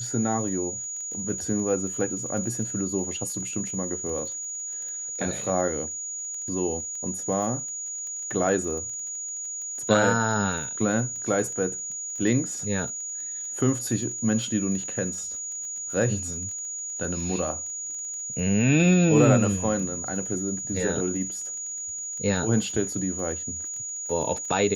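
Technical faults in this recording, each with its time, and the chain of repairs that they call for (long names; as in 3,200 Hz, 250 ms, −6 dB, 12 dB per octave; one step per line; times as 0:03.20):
surface crackle 20 per second −34 dBFS
whistle 6,800 Hz −31 dBFS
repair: click removal
notch filter 6,800 Hz, Q 30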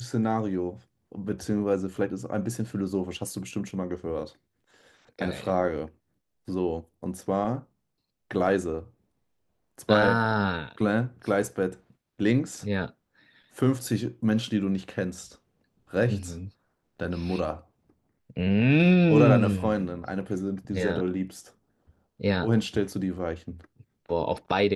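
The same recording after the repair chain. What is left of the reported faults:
none of them is left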